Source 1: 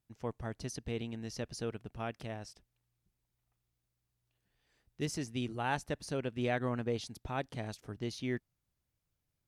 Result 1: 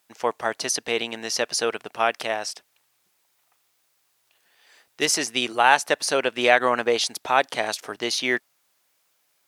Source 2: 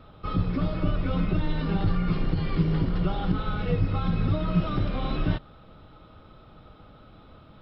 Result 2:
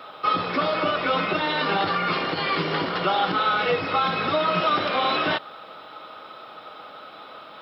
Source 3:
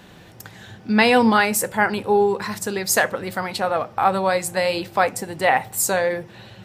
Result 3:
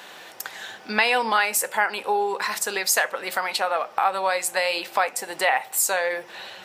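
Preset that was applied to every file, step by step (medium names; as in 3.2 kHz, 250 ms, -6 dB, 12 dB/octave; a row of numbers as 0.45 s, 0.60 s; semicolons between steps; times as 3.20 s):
dynamic bell 2.6 kHz, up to +3 dB, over -41 dBFS, Q 3; high-pass 650 Hz 12 dB/octave; compression 2:1, threshold -33 dBFS; normalise loudness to -23 LUFS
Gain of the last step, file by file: +21.0 dB, +15.5 dB, +7.5 dB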